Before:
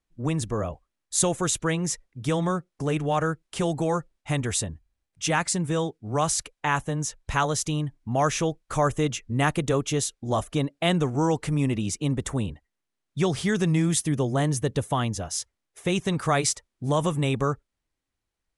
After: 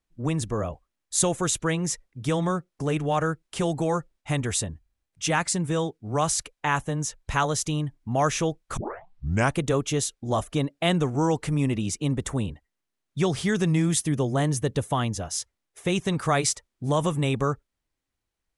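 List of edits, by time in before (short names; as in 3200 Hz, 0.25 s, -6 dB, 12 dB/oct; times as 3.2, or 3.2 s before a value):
8.77 tape start 0.78 s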